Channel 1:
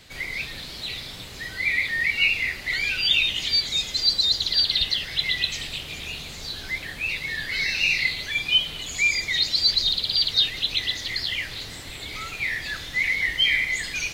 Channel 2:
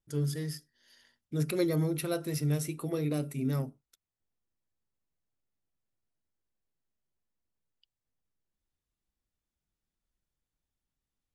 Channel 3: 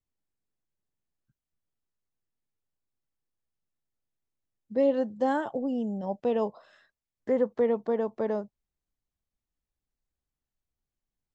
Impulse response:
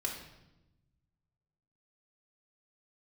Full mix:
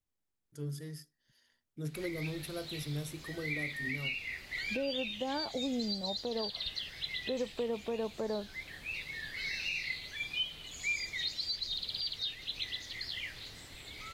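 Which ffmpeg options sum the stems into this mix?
-filter_complex "[0:a]adelay=1850,volume=0.237[s0];[1:a]adelay=450,volume=0.376[s1];[2:a]acompressor=threshold=0.0631:ratio=6,volume=0.891[s2];[s0][s1][s2]amix=inputs=3:normalize=0,alimiter=level_in=1.19:limit=0.0631:level=0:latency=1:release=434,volume=0.841"

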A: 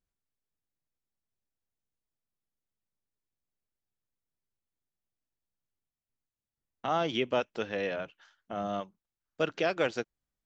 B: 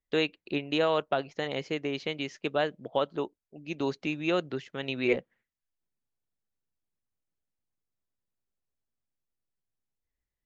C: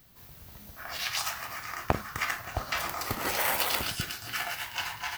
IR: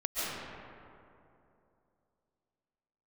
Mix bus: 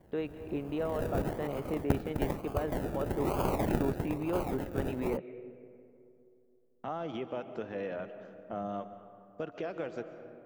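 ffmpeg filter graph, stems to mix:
-filter_complex "[0:a]acompressor=threshold=0.0224:ratio=4,volume=1.06,asplit=2[s0][s1];[s1]volume=0.141[s2];[1:a]lowpass=f=1900:p=1,volume=1.06,asplit=2[s3][s4];[s4]volume=0.0631[s5];[2:a]acrusher=samples=33:mix=1:aa=0.000001:lfo=1:lforange=19.8:lforate=1.1,volume=0.944[s6];[s0][s3]amix=inputs=2:normalize=0,alimiter=level_in=1.12:limit=0.0631:level=0:latency=1:release=22,volume=0.891,volume=1[s7];[3:a]atrim=start_sample=2205[s8];[s2][s5]amix=inputs=2:normalize=0[s9];[s9][s8]afir=irnorm=-1:irlink=0[s10];[s6][s7][s10]amix=inputs=3:normalize=0,equalizer=f=4700:t=o:w=2.5:g=-13.5"

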